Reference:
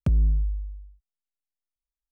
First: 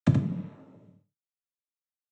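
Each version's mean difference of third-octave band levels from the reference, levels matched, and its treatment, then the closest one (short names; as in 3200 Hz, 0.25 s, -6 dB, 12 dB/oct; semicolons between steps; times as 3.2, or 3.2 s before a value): 9.5 dB: crossover distortion -51.5 dBFS; noise vocoder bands 12; on a send: echo 78 ms -5.5 dB; on the sum: non-linear reverb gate 0.14 s falling, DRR 5.5 dB; gain +6.5 dB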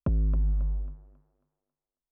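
6.5 dB: compressor 12:1, threshold -30 dBFS, peak gain reduction 12.5 dB; sample leveller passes 3; LPF 1100 Hz 12 dB/oct; thinning echo 0.272 s, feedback 38%, high-pass 240 Hz, level -9 dB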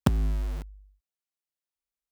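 14.0 dB: HPF 150 Hz 6 dB/oct; dynamic EQ 240 Hz, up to +7 dB, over -45 dBFS, Q 1.4; in parallel at -8.5 dB: companded quantiser 2-bit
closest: second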